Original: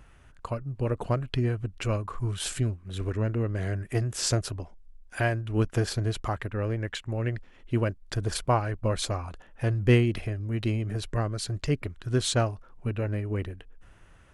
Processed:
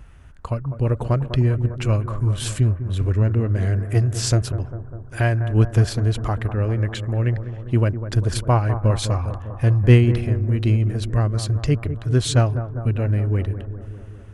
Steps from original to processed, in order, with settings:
parametric band 67 Hz +9 dB 2.6 octaves
bucket-brigade delay 200 ms, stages 2,048, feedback 67%, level −11 dB
level +3 dB

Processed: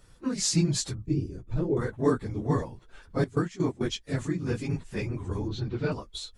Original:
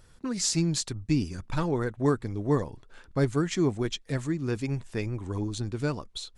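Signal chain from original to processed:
random phases in long frames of 50 ms
0:01.06–0:01.77: drawn EQ curve 140 Hz 0 dB, 220 Hz −8 dB, 370 Hz +5 dB, 990 Hz −15 dB
0:03.24–0:03.81: noise gate −26 dBFS, range −14 dB
0:05.48–0:05.92: low-pass filter 4,600 Hz 24 dB per octave

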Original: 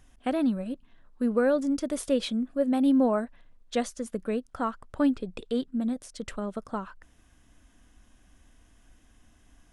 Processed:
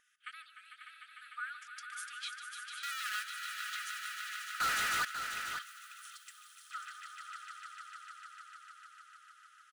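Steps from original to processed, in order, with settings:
downward compressor 2 to 1, threshold −26 dBFS, peak gain reduction 4.5 dB
0:02.83–0:03.23: comparator with hysteresis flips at −32 dBFS
linear-phase brick-wall high-pass 1,200 Hz
high-shelf EQ 2,200 Hz −10.5 dB
comb filter 4.1 ms, depth 33%
echo that builds up and dies away 150 ms, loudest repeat 5, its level −8 dB
0:04.60–0:05.05: leveller curve on the samples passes 5
0:05.62–0:06.71: first difference
single-tap delay 542 ms −8 dB
level +1 dB

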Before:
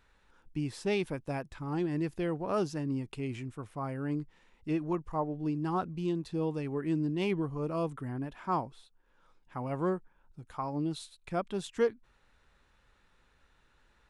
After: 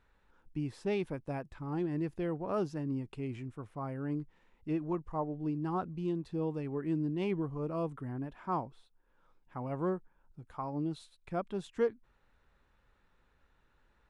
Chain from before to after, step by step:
high-shelf EQ 2,600 Hz −9.5 dB
level −2 dB

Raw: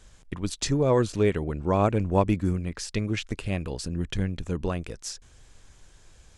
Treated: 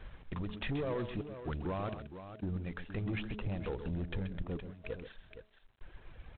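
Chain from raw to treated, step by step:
reverb reduction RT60 1.4 s
low-pass filter 2,700 Hz 24 dB per octave
0:02.28–0:04.58: high-shelf EQ 2,100 Hz −11 dB
hum removal 212.4 Hz, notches 3
downward compressor 6 to 1, threshold −30 dBFS, peak gain reduction 13 dB
brickwall limiter −31 dBFS, peak gain reduction 11 dB
soft clipping −36 dBFS, distortion −14 dB
gate pattern "xxxxx.xx..xxxx" 62 BPM −24 dB
multi-tap delay 131/467 ms −10.5/−11 dB
level +5.5 dB
G.726 24 kbit/s 8,000 Hz

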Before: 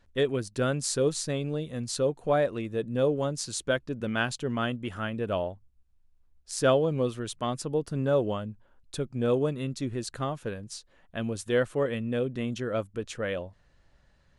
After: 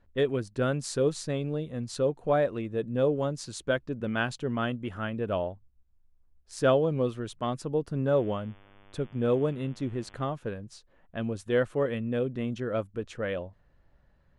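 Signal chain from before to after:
high-shelf EQ 4,200 Hz −9 dB
0:08.10–0:10.23: hum with harmonics 100 Hz, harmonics 35, −57 dBFS −2 dB per octave
one half of a high-frequency compander decoder only

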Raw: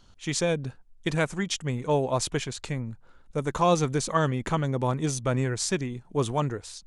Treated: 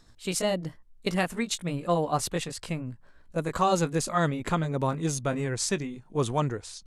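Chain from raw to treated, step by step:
pitch glide at a constant tempo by +3.5 semitones ending unshifted

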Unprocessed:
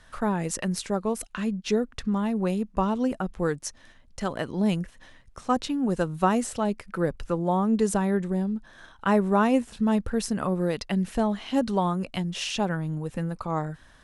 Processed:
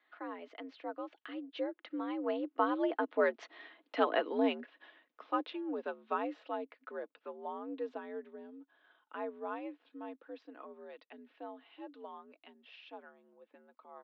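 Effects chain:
source passing by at 0:03.71, 24 m/s, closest 11 metres
comb filter 5 ms, depth 37%
single-sideband voice off tune +72 Hz 250–3,600 Hz
level +2.5 dB

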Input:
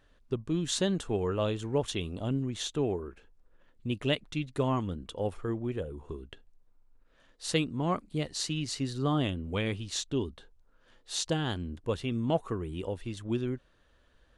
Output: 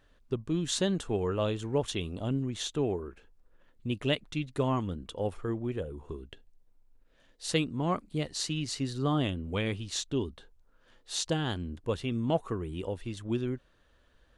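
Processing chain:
0:06.25–0:07.50: parametric band 1,200 Hz −6 dB 0.75 octaves

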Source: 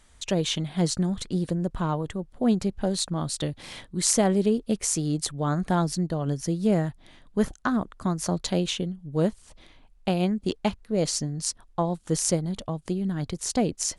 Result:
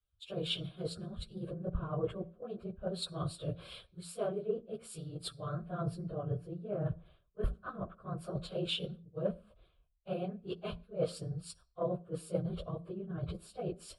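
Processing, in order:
random phases in long frames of 50 ms
high-pass filter 58 Hz 6 dB per octave
reversed playback
downward compressor 16 to 1, threshold −31 dBFS, peak gain reduction 16 dB
reversed playback
high-shelf EQ 2,800 Hz −12 dB
phaser with its sweep stopped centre 1,300 Hz, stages 8
on a send at −19.5 dB: convolution reverb, pre-delay 46 ms
on the sum: multiband upward and downward expander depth 100%
level +2 dB

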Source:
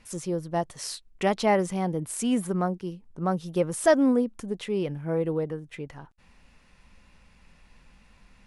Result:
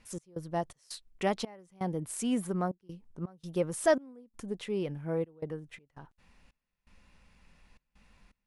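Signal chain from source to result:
gate pattern "x.xx.xxx..xxxx" 83 BPM −24 dB
level −5 dB

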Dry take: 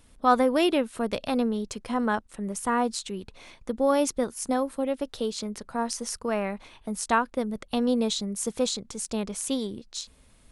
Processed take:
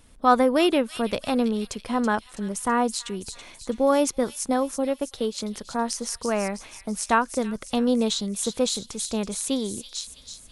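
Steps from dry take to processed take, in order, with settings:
0:04.90–0:05.38: transient designer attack 0 dB, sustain −6 dB
delay with a high-pass on its return 328 ms, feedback 50%, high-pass 3,300 Hz, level −7 dB
level +2.5 dB

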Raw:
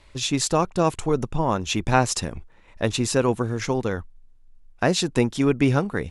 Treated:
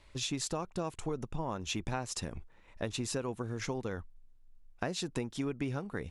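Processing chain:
downward compressor 6 to 1, threshold −25 dBFS, peak gain reduction 12.5 dB
level −7 dB

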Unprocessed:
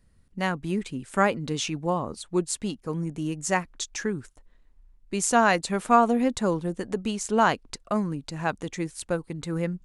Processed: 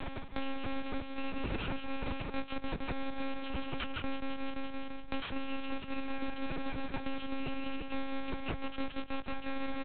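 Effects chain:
samples in bit-reversed order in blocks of 64 samples
dynamic equaliser 240 Hz, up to +6 dB, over −41 dBFS, Q 1.9
repeating echo 171 ms, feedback 51%, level −5 dB
reversed playback
downward compressor 5 to 1, threshold −37 dBFS, peak gain reduction 22 dB
reversed playback
one-pitch LPC vocoder at 8 kHz 270 Hz
low-shelf EQ 330 Hz −6 dB
multiband upward and downward compressor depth 100%
level +11 dB

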